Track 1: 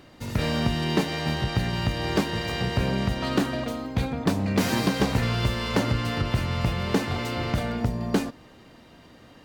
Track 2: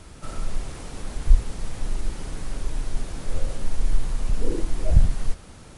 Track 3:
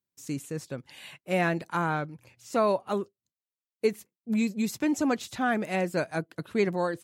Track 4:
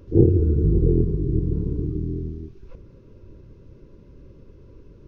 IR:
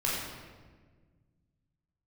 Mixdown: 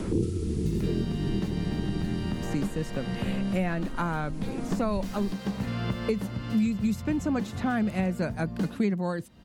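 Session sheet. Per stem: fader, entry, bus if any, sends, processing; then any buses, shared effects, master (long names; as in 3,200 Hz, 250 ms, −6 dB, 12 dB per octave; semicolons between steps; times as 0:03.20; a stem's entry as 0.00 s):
−17.5 dB, 0.45 s, no send, notch filter 2,300 Hz, Q 19; hum removal 55.11 Hz, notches 40
−19.0 dB, 0.00 s, no send, no processing
−4.5 dB, 2.25 s, no send, no processing
−11.5 dB, 0.00 s, no send, Butterworth low-pass 570 Hz 48 dB per octave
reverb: not used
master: parametric band 200 Hz +10.5 dB 0.47 octaves; multiband upward and downward compressor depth 100%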